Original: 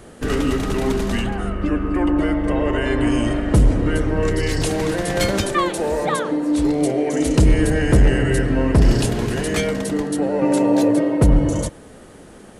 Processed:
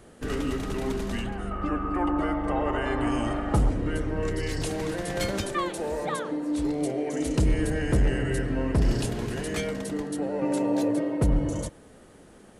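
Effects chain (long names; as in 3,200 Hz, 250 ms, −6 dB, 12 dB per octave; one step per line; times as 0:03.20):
0:01.51–0:03.70: hollow resonant body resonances 820/1,200 Hz, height 14 dB, ringing for 25 ms
level −9 dB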